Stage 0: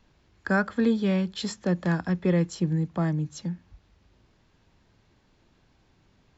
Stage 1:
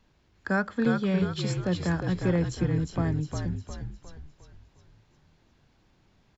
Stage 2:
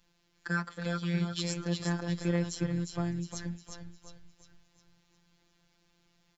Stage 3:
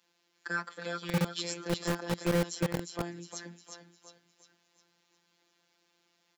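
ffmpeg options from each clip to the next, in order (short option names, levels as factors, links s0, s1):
-filter_complex "[0:a]asplit=7[s0][s1][s2][s3][s4][s5][s6];[s1]adelay=356,afreqshift=-52,volume=0.562[s7];[s2]adelay=712,afreqshift=-104,volume=0.254[s8];[s3]adelay=1068,afreqshift=-156,volume=0.114[s9];[s4]adelay=1424,afreqshift=-208,volume=0.0513[s10];[s5]adelay=1780,afreqshift=-260,volume=0.0232[s11];[s6]adelay=2136,afreqshift=-312,volume=0.0104[s12];[s0][s7][s8][s9][s10][s11][s12]amix=inputs=7:normalize=0,volume=0.75"
-af "highshelf=f=2400:g=11,afftfilt=real='hypot(re,im)*cos(PI*b)':imag='0':win_size=1024:overlap=0.75,volume=0.631"
-filter_complex "[0:a]highpass=59,acrossover=split=230[s0][s1];[s0]acrusher=bits=4:mix=0:aa=0.000001[s2];[s2][s1]amix=inputs=2:normalize=0"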